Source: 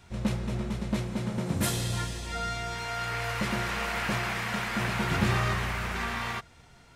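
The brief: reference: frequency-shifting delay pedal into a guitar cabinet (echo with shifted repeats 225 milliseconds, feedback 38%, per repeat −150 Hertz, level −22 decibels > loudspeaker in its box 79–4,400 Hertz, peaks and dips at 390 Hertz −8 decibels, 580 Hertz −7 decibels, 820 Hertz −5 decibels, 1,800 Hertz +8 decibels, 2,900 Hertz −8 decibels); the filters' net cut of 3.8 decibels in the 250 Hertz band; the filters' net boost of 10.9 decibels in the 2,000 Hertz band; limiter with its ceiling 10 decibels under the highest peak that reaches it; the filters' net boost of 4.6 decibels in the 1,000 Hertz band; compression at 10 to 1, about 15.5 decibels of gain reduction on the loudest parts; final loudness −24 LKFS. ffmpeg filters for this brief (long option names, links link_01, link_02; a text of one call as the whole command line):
ffmpeg -i in.wav -filter_complex "[0:a]equalizer=frequency=250:width_type=o:gain=-4.5,equalizer=frequency=1000:width_type=o:gain=4.5,equalizer=frequency=2000:width_type=o:gain=7,acompressor=threshold=-36dB:ratio=10,alimiter=level_in=11.5dB:limit=-24dB:level=0:latency=1,volume=-11.5dB,asplit=4[link_01][link_02][link_03][link_04];[link_02]adelay=225,afreqshift=-150,volume=-22dB[link_05];[link_03]adelay=450,afreqshift=-300,volume=-30.4dB[link_06];[link_04]adelay=675,afreqshift=-450,volume=-38.8dB[link_07];[link_01][link_05][link_06][link_07]amix=inputs=4:normalize=0,highpass=79,equalizer=frequency=390:width_type=q:width=4:gain=-8,equalizer=frequency=580:width_type=q:width=4:gain=-7,equalizer=frequency=820:width_type=q:width=4:gain=-5,equalizer=frequency=1800:width_type=q:width=4:gain=8,equalizer=frequency=2900:width_type=q:width=4:gain=-8,lowpass=frequency=4400:width=0.5412,lowpass=frequency=4400:width=1.3066,volume=18dB" out.wav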